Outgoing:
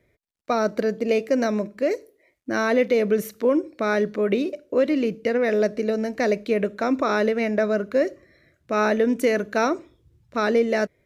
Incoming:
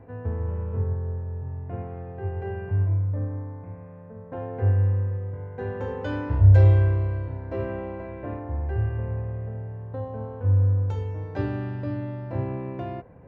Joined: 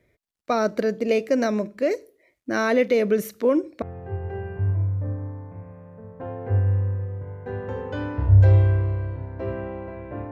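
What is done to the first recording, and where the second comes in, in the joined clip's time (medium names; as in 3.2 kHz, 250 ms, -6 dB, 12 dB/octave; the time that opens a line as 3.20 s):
outgoing
3.82 s: go over to incoming from 1.94 s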